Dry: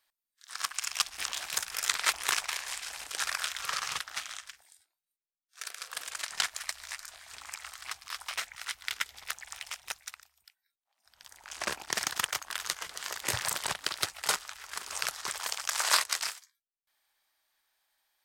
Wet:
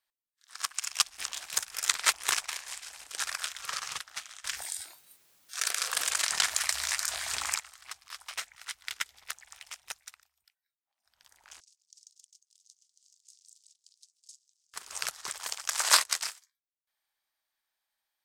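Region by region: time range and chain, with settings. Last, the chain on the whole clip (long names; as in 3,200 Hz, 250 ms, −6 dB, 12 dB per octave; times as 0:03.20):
0:04.44–0:07.60: high-pass filter 42 Hz + envelope flattener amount 70%
0:11.60–0:14.74: inverse Chebyshev high-pass filter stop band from 1,500 Hz, stop band 70 dB + high-frequency loss of the air 130 metres
whole clip: dynamic equaliser 7,700 Hz, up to +4 dB, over −46 dBFS, Q 0.84; expander for the loud parts 1.5 to 1, over −42 dBFS; level +2.5 dB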